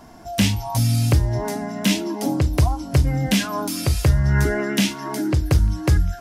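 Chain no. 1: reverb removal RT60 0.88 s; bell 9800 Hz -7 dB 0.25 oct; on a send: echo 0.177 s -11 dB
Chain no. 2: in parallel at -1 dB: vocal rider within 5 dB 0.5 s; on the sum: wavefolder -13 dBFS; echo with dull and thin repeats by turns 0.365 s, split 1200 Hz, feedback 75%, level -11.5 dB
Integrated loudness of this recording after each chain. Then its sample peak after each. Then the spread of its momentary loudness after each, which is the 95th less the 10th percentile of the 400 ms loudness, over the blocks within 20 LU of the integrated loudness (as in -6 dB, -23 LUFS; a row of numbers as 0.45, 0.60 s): -22.5, -19.5 LUFS; -7.0, -9.5 dBFS; 5, 2 LU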